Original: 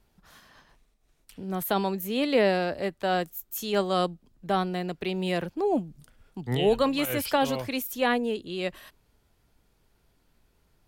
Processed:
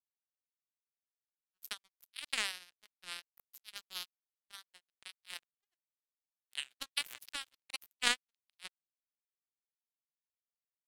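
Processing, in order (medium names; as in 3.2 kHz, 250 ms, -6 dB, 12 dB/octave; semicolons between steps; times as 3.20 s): local Wiener filter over 25 samples; inverse Chebyshev high-pass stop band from 500 Hz, stop band 60 dB; peaking EQ 3.2 kHz +3.5 dB 0.28 oct; power-law waveshaper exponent 3; warped record 33 1/3 rpm, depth 100 cents; trim +11 dB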